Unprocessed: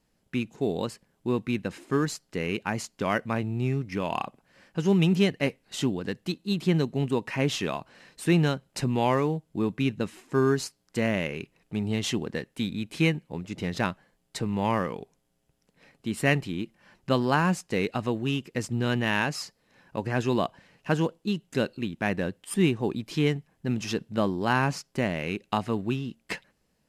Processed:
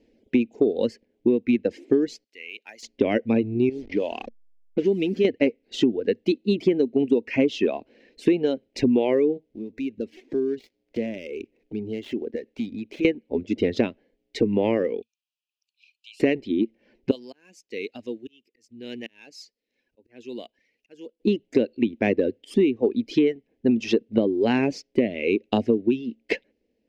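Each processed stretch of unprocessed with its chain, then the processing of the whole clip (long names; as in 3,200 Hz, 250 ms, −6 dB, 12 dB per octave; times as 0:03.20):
0:02.24–0:02.83: de-essing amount 80% + first difference
0:03.69–0:05.25: hold until the input has moved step −37 dBFS + low-pass that shuts in the quiet parts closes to 1,600 Hz, open at −22 dBFS + downward compressor 2 to 1, threshold −33 dBFS
0:09.49–0:13.05: gap after every zero crossing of 0.081 ms + downward compressor 3 to 1, threshold −41 dBFS
0:15.02–0:16.20: Chebyshev high-pass filter 2,400 Hz, order 8 + downward compressor 1.5 to 1, threshold −55 dBFS
0:17.11–0:21.20: first-order pre-emphasis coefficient 0.9 + volume swells 534 ms
whole clip: reverb reduction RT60 1.9 s; drawn EQ curve 100 Hz 0 dB, 160 Hz −11 dB, 230 Hz +11 dB, 470 Hz +13 dB, 1,200 Hz −16 dB, 2,200 Hz +4 dB, 6,200 Hz −7 dB, 8,800 Hz −20 dB; downward compressor 12 to 1, threshold −21 dBFS; level +5 dB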